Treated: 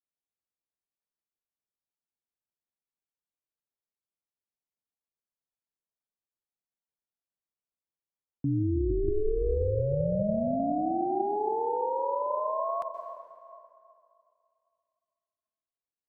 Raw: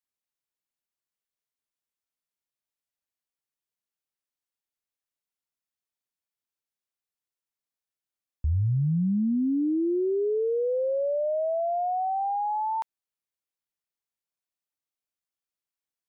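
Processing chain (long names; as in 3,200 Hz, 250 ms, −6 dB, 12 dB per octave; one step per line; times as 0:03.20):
low-pass that shuts in the quiet parts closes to 920 Hz
dense smooth reverb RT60 2.5 s, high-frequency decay 0.65×, pre-delay 115 ms, DRR 7.5 dB
ring modulation 210 Hz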